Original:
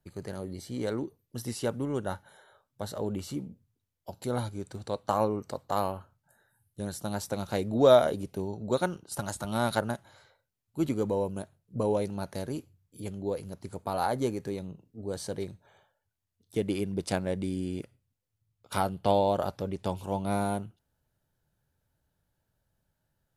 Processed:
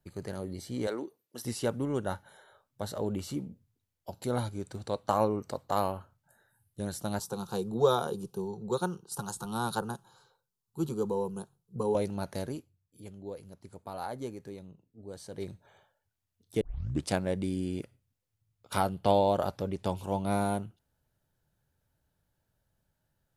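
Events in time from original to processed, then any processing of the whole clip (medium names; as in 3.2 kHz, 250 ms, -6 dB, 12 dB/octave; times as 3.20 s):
0.87–1.45 s: high-pass 340 Hz
7.19–11.95 s: static phaser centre 410 Hz, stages 8
12.45–15.50 s: dip -9 dB, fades 0.19 s
16.61 s: tape start 0.47 s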